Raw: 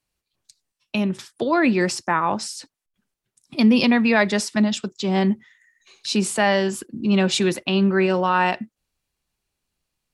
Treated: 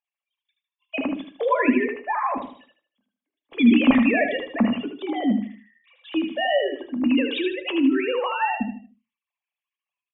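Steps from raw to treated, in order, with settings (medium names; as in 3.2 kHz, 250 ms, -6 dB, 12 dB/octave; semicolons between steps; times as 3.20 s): formants replaced by sine waves; peaking EQ 1.5 kHz -9 dB 0.49 oct; reverberation, pre-delay 4 ms, DRR 9 dB; dynamic bell 510 Hz, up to -5 dB, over -27 dBFS, Q 0.84; feedback delay 77 ms, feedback 34%, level -6 dB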